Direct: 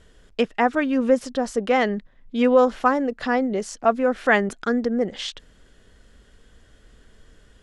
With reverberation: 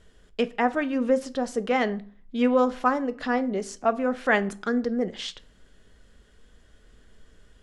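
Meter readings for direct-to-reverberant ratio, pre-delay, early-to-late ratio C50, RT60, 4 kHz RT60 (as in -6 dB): 12.0 dB, 5 ms, 19.5 dB, 0.45 s, 0.35 s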